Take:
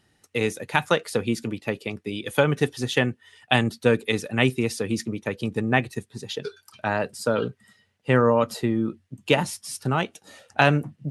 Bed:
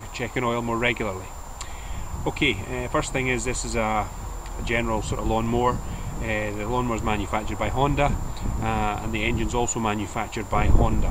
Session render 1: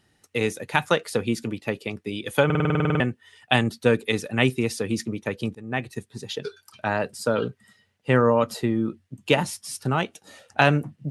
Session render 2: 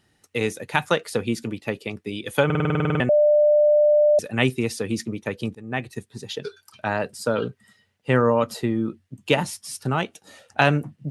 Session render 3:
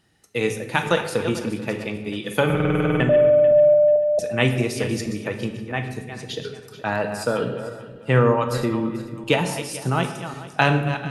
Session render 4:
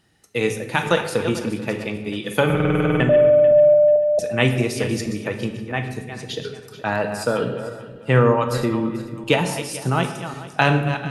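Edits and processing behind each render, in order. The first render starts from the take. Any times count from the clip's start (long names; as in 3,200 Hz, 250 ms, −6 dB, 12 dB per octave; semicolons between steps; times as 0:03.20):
0:02.45: stutter in place 0.05 s, 11 plays; 0:05.55–0:06.28: fade in equal-power, from −23.5 dB
0:03.09–0:04.19: beep over 596 Hz −13 dBFS
feedback delay that plays each chunk backwards 220 ms, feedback 48%, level −11 dB; rectangular room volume 410 cubic metres, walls mixed, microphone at 0.66 metres
level +1.5 dB; brickwall limiter −2 dBFS, peak gain reduction 1.5 dB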